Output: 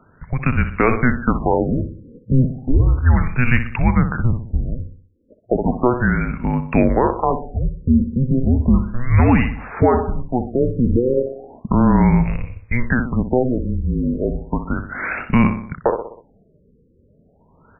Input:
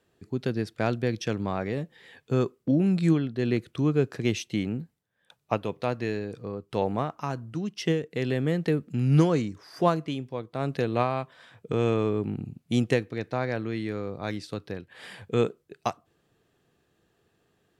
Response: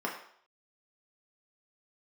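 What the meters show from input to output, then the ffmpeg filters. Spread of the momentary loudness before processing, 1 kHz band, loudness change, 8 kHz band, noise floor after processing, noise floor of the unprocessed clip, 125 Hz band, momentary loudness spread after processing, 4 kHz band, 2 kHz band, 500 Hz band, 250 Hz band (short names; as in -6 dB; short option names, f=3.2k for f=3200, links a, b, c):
11 LU, +10.0 dB, +9.5 dB, under -30 dB, -56 dBFS, -71 dBFS, +10.0 dB, 9 LU, n/a, +12.5 dB, +6.5 dB, +9.5 dB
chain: -filter_complex "[0:a]aemphasis=mode=production:type=riaa,afftfilt=real='re*between(b*sr/4096,130,4500)':imag='im*between(b*sr/4096,130,4500)':win_size=4096:overlap=0.75,aphaser=in_gain=1:out_gain=1:delay=4.6:decay=0.26:speed=0.45:type=sinusoidal,asplit=2[a][b];[b]adelay=62,lowpass=f=3.3k:p=1,volume=-10.5dB,asplit=2[c][d];[d]adelay=62,lowpass=f=3.3k:p=1,volume=0.47,asplit=2[e][f];[f]adelay=62,lowpass=f=3.3k:p=1,volume=0.47,asplit=2[g][h];[h]adelay=62,lowpass=f=3.3k:p=1,volume=0.47,asplit=2[i][j];[j]adelay=62,lowpass=f=3.3k:p=1,volume=0.47[k];[c][e][g][i][k]amix=inputs=5:normalize=0[l];[a][l]amix=inputs=2:normalize=0,afreqshift=-250,asplit=2[m][n];[n]acompressor=threshold=-39dB:ratio=20,volume=-1dB[o];[m][o]amix=inputs=2:normalize=0,alimiter=level_in=17dB:limit=-1dB:release=50:level=0:latency=1,afftfilt=real='re*lt(b*sr/1024,540*pow(2900/540,0.5+0.5*sin(2*PI*0.34*pts/sr)))':imag='im*lt(b*sr/1024,540*pow(2900/540,0.5+0.5*sin(2*PI*0.34*pts/sr)))':win_size=1024:overlap=0.75,volume=-2.5dB"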